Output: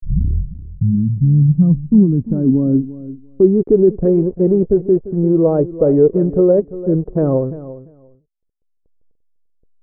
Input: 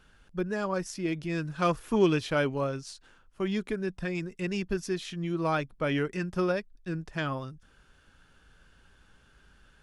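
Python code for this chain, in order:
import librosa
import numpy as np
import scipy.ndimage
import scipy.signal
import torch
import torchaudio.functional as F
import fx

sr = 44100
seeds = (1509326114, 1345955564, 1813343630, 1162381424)

p1 = fx.tape_start_head(x, sr, length_s=1.53)
p2 = scipy.signal.sosfilt(scipy.signal.butter(2, 1200.0, 'lowpass', fs=sr, output='sos'), p1)
p3 = fx.over_compress(p2, sr, threshold_db=-33.0, ratio=-1.0)
p4 = p2 + (p3 * 10.0 ** (2.0 / 20.0))
p5 = fx.env_lowpass(p4, sr, base_hz=600.0, full_db=-21.5)
p6 = fx.backlash(p5, sr, play_db=-35.5)
p7 = fx.filter_sweep_lowpass(p6, sr, from_hz=160.0, to_hz=470.0, start_s=1.35, end_s=4.1, q=3.6)
p8 = p7 + fx.echo_feedback(p7, sr, ms=345, feedback_pct=16, wet_db=-15.5, dry=0)
y = p8 * 10.0 ** (7.5 / 20.0)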